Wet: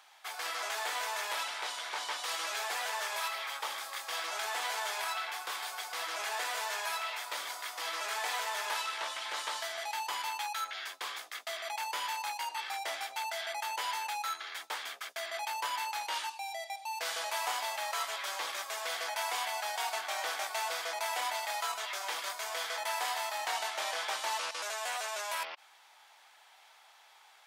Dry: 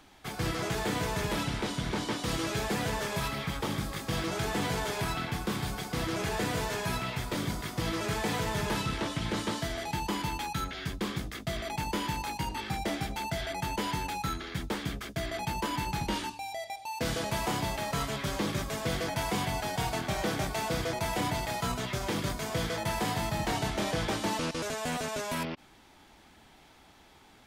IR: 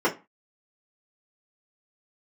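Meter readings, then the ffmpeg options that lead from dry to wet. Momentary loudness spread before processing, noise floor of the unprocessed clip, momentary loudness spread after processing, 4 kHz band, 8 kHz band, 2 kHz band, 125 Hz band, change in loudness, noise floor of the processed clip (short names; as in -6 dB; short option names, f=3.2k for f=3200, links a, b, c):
4 LU, -57 dBFS, 5 LU, 0.0 dB, 0.0 dB, 0.0 dB, under -40 dB, -2.5 dB, -60 dBFS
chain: -af "highpass=f=710:w=0.5412,highpass=f=710:w=1.3066"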